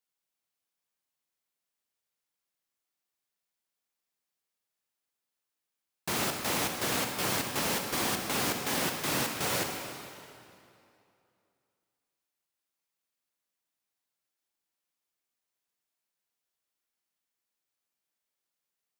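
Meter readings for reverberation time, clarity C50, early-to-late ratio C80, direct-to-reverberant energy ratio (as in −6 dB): 2.6 s, 3.5 dB, 4.5 dB, 3.0 dB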